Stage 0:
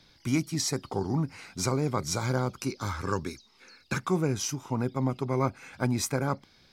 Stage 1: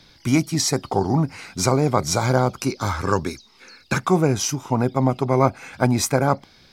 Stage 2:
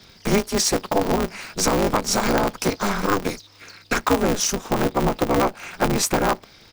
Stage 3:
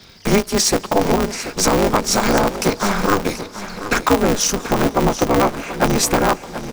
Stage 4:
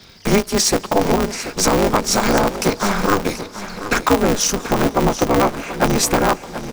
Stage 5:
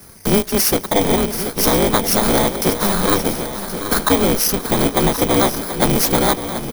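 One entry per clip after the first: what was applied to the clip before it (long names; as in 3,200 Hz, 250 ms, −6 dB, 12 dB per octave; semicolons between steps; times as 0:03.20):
dynamic equaliser 700 Hz, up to +7 dB, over −47 dBFS, Q 2.1; level +8 dB
comb filter 2.7 ms, depth 97%; downward compressor 2.5 to 1, threshold −17 dBFS, peak gain reduction 6.5 dB; ring modulator with a square carrier 100 Hz
repeating echo 733 ms, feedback 38%, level −12.5 dB; on a send at −21.5 dB: convolution reverb RT60 4.7 s, pre-delay 135 ms; on the sum: level +4 dB
no processing that can be heard
samples in bit-reversed order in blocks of 16 samples; in parallel at −10 dB: wave folding −18 dBFS; on the sum: single-tap delay 1,077 ms −12 dB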